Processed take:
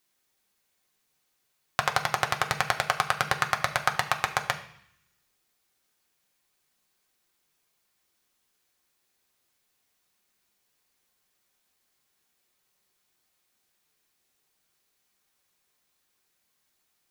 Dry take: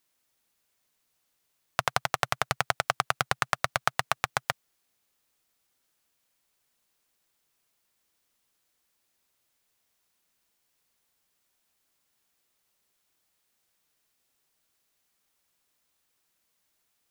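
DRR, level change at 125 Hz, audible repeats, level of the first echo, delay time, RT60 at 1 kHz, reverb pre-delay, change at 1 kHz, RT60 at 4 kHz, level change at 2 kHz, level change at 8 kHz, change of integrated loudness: 2.5 dB, +1.0 dB, no echo audible, no echo audible, no echo audible, 0.70 s, 3 ms, +2.0 dB, 0.80 s, +2.5 dB, +1.0 dB, +1.5 dB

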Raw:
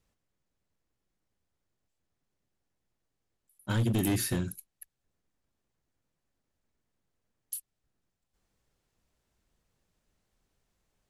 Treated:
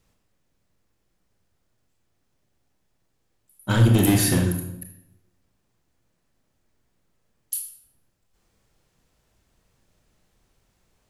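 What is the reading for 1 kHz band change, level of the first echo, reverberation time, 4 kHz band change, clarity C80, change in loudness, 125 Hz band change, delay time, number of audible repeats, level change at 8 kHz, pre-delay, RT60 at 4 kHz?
+10.5 dB, no echo audible, 0.85 s, +10.0 dB, 8.5 dB, +10.5 dB, +11.5 dB, no echo audible, no echo audible, +10.0 dB, 25 ms, 0.65 s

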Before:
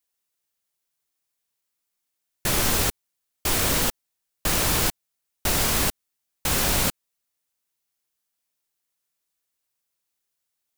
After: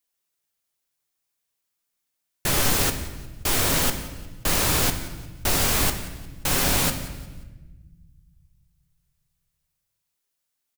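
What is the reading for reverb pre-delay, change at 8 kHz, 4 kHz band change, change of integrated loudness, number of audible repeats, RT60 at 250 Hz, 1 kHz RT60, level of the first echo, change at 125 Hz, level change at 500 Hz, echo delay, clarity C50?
7 ms, +0.5 dB, +1.0 dB, +0.5 dB, 3, 2.2 s, 1.1 s, −18.5 dB, +2.0 dB, +1.0 dB, 178 ms, 9.5 dB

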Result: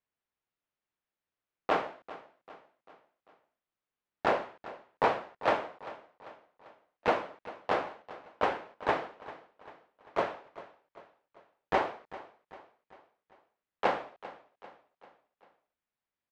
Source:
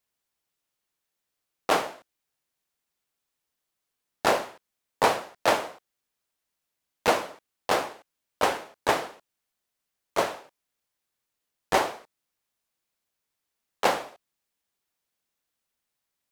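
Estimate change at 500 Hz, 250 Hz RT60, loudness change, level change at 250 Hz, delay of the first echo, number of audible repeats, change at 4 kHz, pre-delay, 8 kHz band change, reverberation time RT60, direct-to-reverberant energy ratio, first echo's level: −4.5 dB, no reverb audible, −6.0 dB, −4.5 dB, 394 ms, 3, −11.5 dB, no reverb audible, below −20 dB, no reverb audible, no reverb audible, −17.0 dB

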